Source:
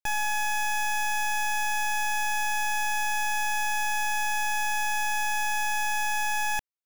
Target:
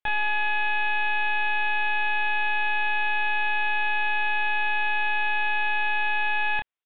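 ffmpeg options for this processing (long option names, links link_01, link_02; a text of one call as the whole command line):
ffmpeg -i in.wav -filter_complex "[0:a]lowshelf=frequency=470:gain=-6.5,aresample=8000,volume=27.5dB,asoftclip=hard,volume=-27.5dB,aresample=44100,asplit=2[link_01][link_02];[link_02]adelay=28,volume=-5dB[link_03];[link_01][link_03]amix=inputs=2:normalize=0,volume=5.5dB" out.wav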